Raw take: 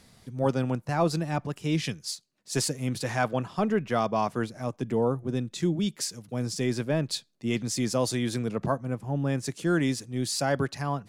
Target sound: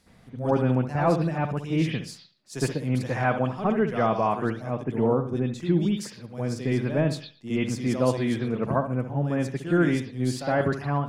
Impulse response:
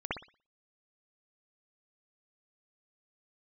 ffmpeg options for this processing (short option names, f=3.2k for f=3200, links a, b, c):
-filter_complex "[1:a]atrim=start_sample=2205,asetrate=41013,aresample=44100[a];[0:a][a]afir=irnorm=-1:irlink=0,volume=-3.5dB"